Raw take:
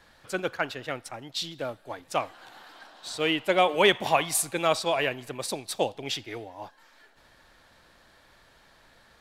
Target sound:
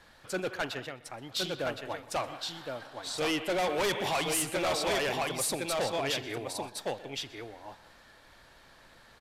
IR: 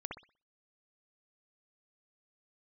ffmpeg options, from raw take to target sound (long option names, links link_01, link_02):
-filter_complex "[0:a]asettb=1/sr,asplit=3[link_01][link_02][link_03];[link_01]atrim=end=0.794[link_04];[link_02]atrim=start=0.79:end=1.35,asetpts=PTS-STARTPTS,afade=type=in:duration=0.004:curve=qsin,afade=type=out:start_time=0.556:duration=0.004:curve=qsin,acompressor=threshold=-37dB:ratio=16[link_05];[link_03]atrim=start=1.346[link_06];[link_04][link_05]acrossfade=duration=0.004:curve1=hsin:curve2=qsin[link_07];[link_07][link_06]acrossfade=duration=0.004:curve1=qsin:curve2=hsin,aecho=1:1:1065:0.531,asplit=2[link_08][link_09];[1:a]atrim=start_sample=2205,asetrate=57330,aresample=44100,adelay=125[link_10];[link_09][link_10]afir=irnorm=-1:irlink=0,volume=-14dB[link_11];[link_08][link_11]amix=inputs=2:normalize=0,volume=26.5dB,asoftclip=hard,volume=-26.5dB,aresample=32000,aresample=44100"